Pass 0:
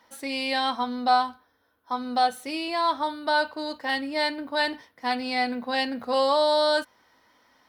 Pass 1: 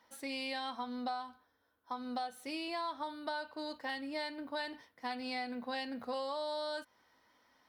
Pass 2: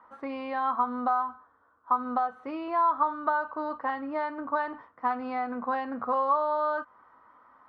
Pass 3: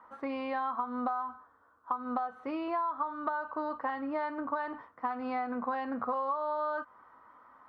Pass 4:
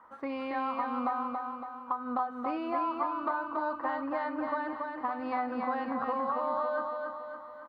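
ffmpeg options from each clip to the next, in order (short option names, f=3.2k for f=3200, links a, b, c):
-af "acompressor=threshold=-27dB:ratio=12,volume=-8dB"
-af "lowpass=f=1.2k:t=q:w=6.1,volume=6dB"
-af "acompressor=threshold=-29dB:ratio=10"
-af "aecho=1:1:280|560|840|1120|1400|1680|1960:0.631|0.328|0.171|0.0887|0.0461|0.024|0.0125"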